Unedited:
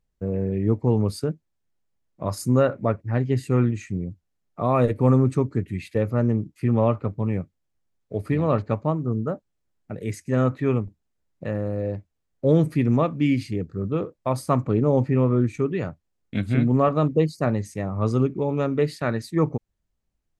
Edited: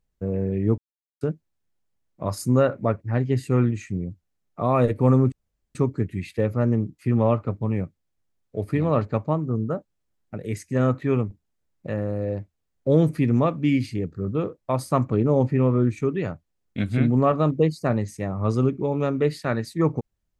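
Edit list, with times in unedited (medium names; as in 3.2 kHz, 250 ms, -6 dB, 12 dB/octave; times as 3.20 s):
0.78–1.21 s: mute
5.32 s: insert room tone 0.43 s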